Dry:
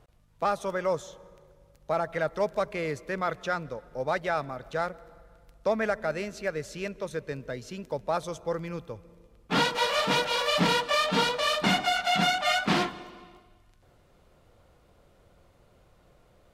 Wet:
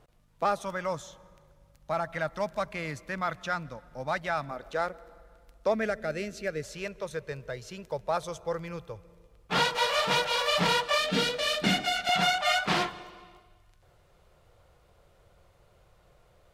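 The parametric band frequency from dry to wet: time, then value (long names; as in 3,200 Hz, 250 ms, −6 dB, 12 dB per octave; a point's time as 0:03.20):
parametric band −13 dB 0.62 octaves
69 Hz
from 0:00.62 430 Hz
from 0:04.51 130 Hz
from 0:05.74 970 Hz
from 0:06.63 260 Hz
from 0:10.98 1,000 Hz
from 0:12.09 250 Hz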